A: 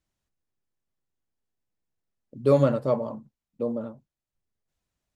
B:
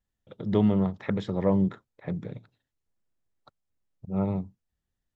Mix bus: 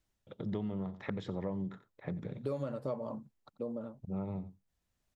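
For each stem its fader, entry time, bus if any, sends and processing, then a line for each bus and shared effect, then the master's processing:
+2.0 dB, 0.00 s, no send, no echo send, automatic ducking −9 dB, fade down 0.35 s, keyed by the second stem
−3.0 dB, 0.00 s, no send, echo send −18 dB, no processing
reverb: not used
echo: single-tap delay 89 ms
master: downward compressor 6 to 1, threshold −34 dBFS, peak gain reduction 14.5 dB

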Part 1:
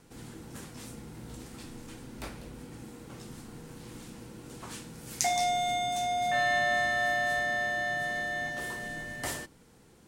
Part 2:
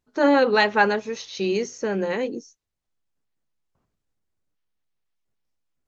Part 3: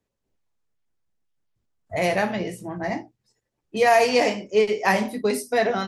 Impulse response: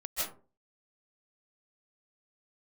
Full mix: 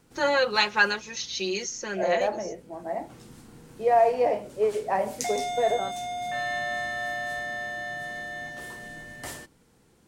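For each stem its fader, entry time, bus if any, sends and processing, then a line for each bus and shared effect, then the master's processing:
−3.0 dB, 0.00 s, no send, automatic ducking −10 dB, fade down 1.35 s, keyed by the second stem
−5.5 dB, 0.00 s, no send, spectral tilt +3.5 dB per octave; comb filter 5.6 ms, depth 76%
−1.0 dB, 0.05 s, no send, resonant band-pass 620 Hz, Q 1.7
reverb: not used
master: no processing

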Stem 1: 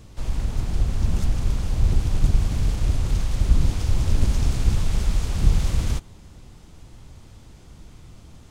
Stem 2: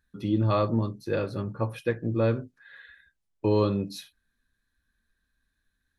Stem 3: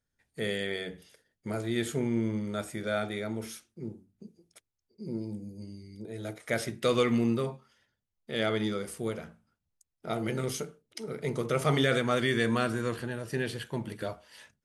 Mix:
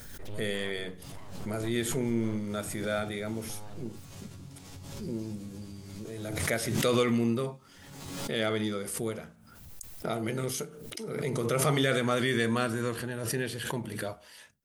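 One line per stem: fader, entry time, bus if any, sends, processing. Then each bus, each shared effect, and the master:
0:04.80 −2 dB → 0:05.43 −8.5 dB, 0.85 s, bus A, no send, gate on every frequency bin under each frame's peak −10 dB weak; downward compressor, threshold −30 dBFS, peak gain reduction 9 dB; resonators tuned to a chord F#2 fifth, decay 0.24 s
−13.0 dB, 0.05 s, bus A, no send, full-wave rectification
−1.0 dB, 0.00 s, no bus, no send, no processing
bus A: 0.0 dB, low-shelf EQ 100 Hz +6.5 dB; downward compressor 2 to 1, threshold −47 dBFS, peak gain reduction 11 dB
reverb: not used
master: high-shelf EQ 11,000 Hz +11.5 dB; background raised ahead of every attack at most 39 dB per second

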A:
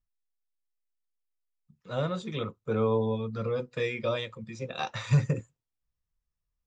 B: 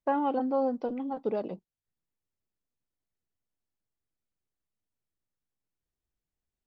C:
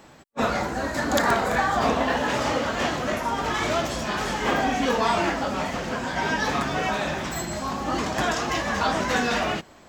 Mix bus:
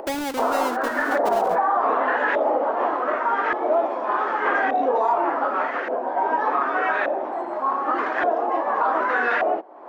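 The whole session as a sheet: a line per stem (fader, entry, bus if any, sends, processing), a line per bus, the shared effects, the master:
−2.5 dB, 0.00 s, no bus, no send, downward compressor, threshold −35 dBFS, peak gain reduction 16 dB; four-pole ladder high-pass 280 Hz, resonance 40%
−3.5 dB, 0.00 s, bus A, no send, each half-wave held at its own peak
+1.5 dB, 0.00 s, bus A, no send, Butterworth high-pass 300 Hz 36 dB per octave; auto-filter low-pass saw up 0.85 Hz 640–1,800 Hz
bus A: 0.0 dB, upward compression, threshold −26 dBFS; brickwall limiter −12 dBFS, peak gain reduction 6 dB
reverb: not used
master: no processing

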